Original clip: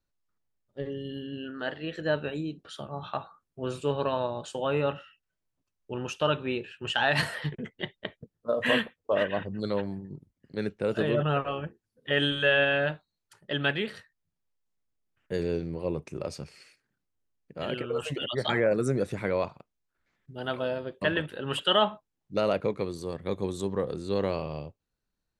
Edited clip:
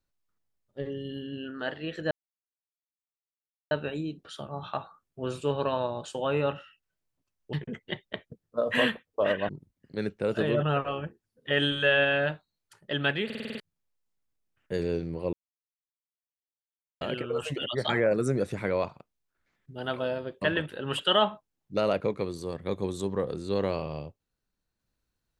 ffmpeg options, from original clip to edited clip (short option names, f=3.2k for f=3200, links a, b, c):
-filter_complex "[0:a]asplit=13[a][b][c][d][e][f][g][h][i][j][k][l][m];[a]atrim=end=2.11,asetpts=PTS-STARTPTS,afade=t=out:st=2.106:d=0.004:c=hsin,apad=pad_dur=1.6[n];[b]atrim=start=2.11:end=5.932,asetpts=PTS-STARTPTS,afade=t=in:d=0.004:c=hsin[o];[c]atrim=start=7.438:end=9.402[p];[d]atrim=start=10.088:end=13.902[q];[e]atrim=start=13.848:end=13.902[r];[f]atrim=start=13.848:end=13.902[s];[g]atrim=start=13.848:end=13.902[t];[h]atrim=start=13.848:end=13.902[u];[i]atrim=start=13.848:end=13.902[v];[j]atrim=start=13.848:end=13.902[w];[k]atrim=start=14.198:end=15.93,asetpts=PTS-STARTPTS,afade=t=out:st=1.728:d=0.004:c=hsin[x];[l]atrim=start=15.93:end=17.61,asetpts=PTS-STARTPTS,volume=0[y];[m]atrim=start=17.61,asetpts=PTS-STARTPTS,afade=t=in:d=0.004:c=hsin[z];[n][o]concat=n=2:v=0:a=1[aa];[aa][p]acrossfade=d=0.004:c1=hsin:c2=hsin[ab];[ab][q]acrossfade=d=0.004:c1=hsin:c2=hsin[ac];[ac][r]acrossfade=d=0.004:c1=hsin:c2=hsin[ad];[ad][s]acrossfade=d=0.004:c1=hsin:c2=hsin[ae];[ae][t]acrossfade=d=0.004:c1=hsin:c2=hsin[af];[af][u]acrossfade=d=0.004:c1=hsin:c2=hsin[ag];[ag][v]acrossfade=d=0.004:c1=hsin:c2=hsin[ah];[ah][w]acrossfade=d=0.004:c1=hsin:c2=hsin[ai];[x][y][z]concat=n=3:v=0:a=1[aj];[ai][aj]acrossfade=d=0.004:c1=hsin:c2=hsin"